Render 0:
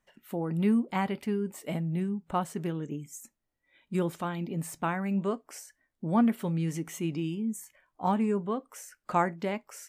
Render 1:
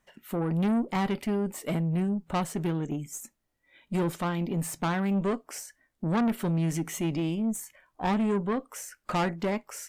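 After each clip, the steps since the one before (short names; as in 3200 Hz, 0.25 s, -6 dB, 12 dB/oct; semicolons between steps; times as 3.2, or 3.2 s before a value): tube stage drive 29 dB, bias 0.35; gain +6.5 dB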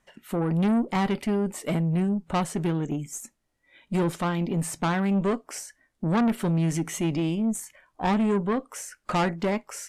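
LPF 12000 Hz 24 dB/oct; gain +3 dB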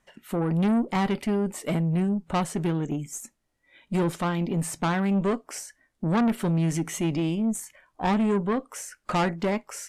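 nothing audible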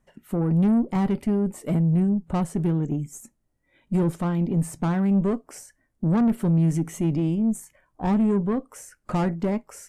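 EQ curve 130 Hz 0 dB, 3700 Hz -16 dB, 9500 Hz -9 dB; gain +5.5 dB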